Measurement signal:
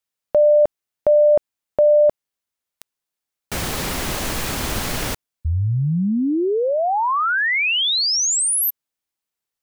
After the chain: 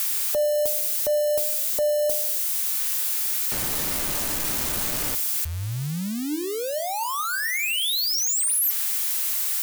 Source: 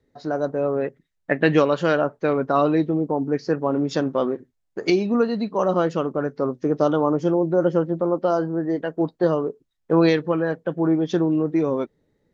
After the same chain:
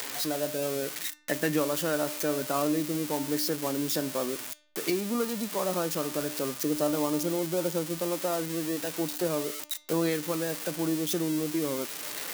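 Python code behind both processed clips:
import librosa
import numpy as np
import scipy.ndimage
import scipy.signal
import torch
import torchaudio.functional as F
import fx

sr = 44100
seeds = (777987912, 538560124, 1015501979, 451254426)

y = x + 0.5 * 10.0 ** (-11.5 / 20.0) * np.diff(np.sign(x), prepend=np.sign(x[:1]))
y = fx.comb_fb(y, sr, f0_hz=300.0, decay_s=0.61, harmonics='all', damping=0.1, mix_pct=70)
y = fx.band_squash(y, sr, depth_pct=40)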